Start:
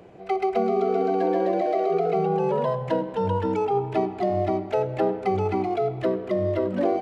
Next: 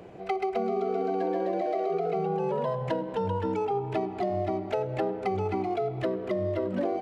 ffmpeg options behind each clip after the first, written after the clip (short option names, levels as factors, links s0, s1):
-af "acompressor=threshold=0.0355:ratio=3,volume=1.19"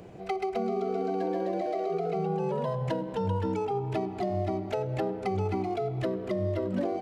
-af "bass=f=250:g=6,treble=f=4000:g=7,volume=0.75"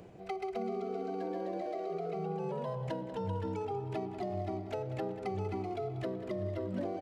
-af "aecho=1:1:190|380|570|760|950|1140:0.2|0.118|0.0695|0.041|0.0242|0.0143,areverse,acompressor=mode=upward:threshold=0.0141:ratio=2.5,areverse,volume=0.447"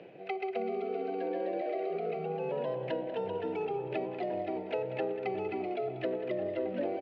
-filter_complex "[0:a]highpass=f=160:w=0.5412,highpass=f=160:w=1.3066,equalizer=f=200:t=q:w=4:g=-8,equalizer=f=530:t=q:w=4:g=6,equalizer=f=1100:t=q:w=4:g=-8,equalizer=f=1800:t=q:w=4:g=4,equalizer=f=2600:t=q:w=4:g=9,lowpass=f=3900:w=0.5412,lowpass=f=3900:w=1.3066,asplit=2[s0][s1];[s1]adelay=1399,volume=0.355,highshelf=f=4000:g=-31.5[s2];[s0][s2]amix=inputs=2:normalize=0,volume=1.26"